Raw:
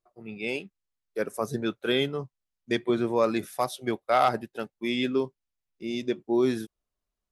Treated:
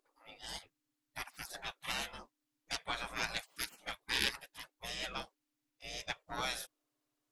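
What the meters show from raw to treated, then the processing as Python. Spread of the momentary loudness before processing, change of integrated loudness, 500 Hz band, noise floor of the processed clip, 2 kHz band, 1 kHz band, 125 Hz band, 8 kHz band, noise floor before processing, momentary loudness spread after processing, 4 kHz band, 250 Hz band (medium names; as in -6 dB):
12 LU, -11.5 dB, -23.5 dB, under -85 dBFS, -4.5 dB, -14.5 dB, -16.5 dB, +1.0 dB, under -85 dBFS, 15 LU, -3.0 dB, -25.0 dB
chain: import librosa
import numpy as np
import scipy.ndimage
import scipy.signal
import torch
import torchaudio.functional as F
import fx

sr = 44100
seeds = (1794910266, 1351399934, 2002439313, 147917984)

y = fx.cheby_harmonics(x, sr, harmonics=(3, 8), levels_db=(-21, -33), full_scale_db=-10.0)
y = fx.dmg_buzz(y, sr, base_hz=50.0, harmonics=6, level_db=-62.0, tilt_db=-8, odd_only=False)
y = fx.spec_gate(y, sr, threshold_db=-25, keep='weak')
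y = y * 10.0 ** (6.5 / 20.0)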